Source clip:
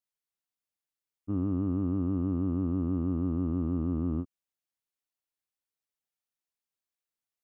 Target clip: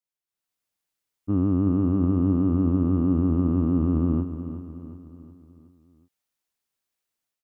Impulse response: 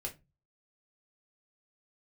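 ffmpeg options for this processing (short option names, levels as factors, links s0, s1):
-af "dynaudnorm=f=260:g=3:m=3.55,aecho=1:1:367|734|1101|1468|1835:0.282|0.138|0.0677|0.0332|0.0162,volume=0.668"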